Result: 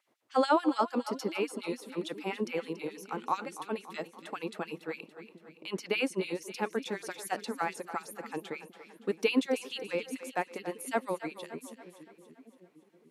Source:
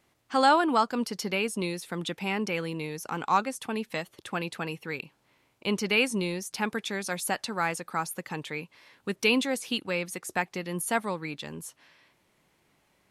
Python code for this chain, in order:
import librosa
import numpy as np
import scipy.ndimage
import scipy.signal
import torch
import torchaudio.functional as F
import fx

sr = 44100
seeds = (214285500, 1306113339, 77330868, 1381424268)

y = fx.tilt_shelf(x, sr, db=7.0, hz=750.0)
y = fx.filter_lfo_highpass(y, sr, shape='sine', hz=6.9, low_hz=290.0, high_hz=3300.0, q=1.2)
y = fx.echo_split(y, sr, split_hz=380.0, low_ms=755, high_ms=284, feedback_pct=52, wet_db=-12.5)
y = y * librosa.db_to_amplitude(-3.0)